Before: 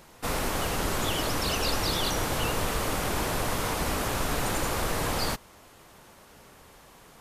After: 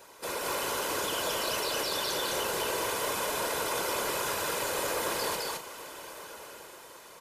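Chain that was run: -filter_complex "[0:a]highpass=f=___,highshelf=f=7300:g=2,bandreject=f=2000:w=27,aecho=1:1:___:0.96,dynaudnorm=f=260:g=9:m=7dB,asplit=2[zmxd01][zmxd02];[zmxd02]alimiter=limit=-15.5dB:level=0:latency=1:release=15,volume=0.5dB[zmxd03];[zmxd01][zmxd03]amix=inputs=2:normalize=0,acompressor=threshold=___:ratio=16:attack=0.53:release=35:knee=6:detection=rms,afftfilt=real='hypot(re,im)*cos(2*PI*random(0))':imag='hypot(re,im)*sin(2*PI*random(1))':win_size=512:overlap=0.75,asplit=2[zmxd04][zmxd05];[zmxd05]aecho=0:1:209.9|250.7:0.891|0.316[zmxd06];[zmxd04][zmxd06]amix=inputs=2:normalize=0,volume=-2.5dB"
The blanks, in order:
250, 2, -20dB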